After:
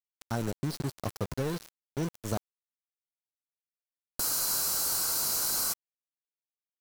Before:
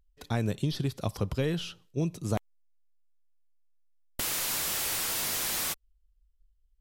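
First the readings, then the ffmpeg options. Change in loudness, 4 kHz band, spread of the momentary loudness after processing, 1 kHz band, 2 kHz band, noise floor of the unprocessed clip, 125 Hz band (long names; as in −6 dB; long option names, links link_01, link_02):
+1.0 dB, −1.0 dB, 11 LU, 0.0 dB, −5.5 dB, −69 dBFS, −4.5 dB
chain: -af "afftfilt=real='re*(1-between(b*sr/4096,1600,3900))':imag='im*(1-between(b*sr/4096,1600,3900))':win_size=4096:overlap=0.75,tiltshelf=frequency=1200:gain=-3,aeval=exprs='val(0)*gte(abs(val(0)),0.0224)':channel_layout=same"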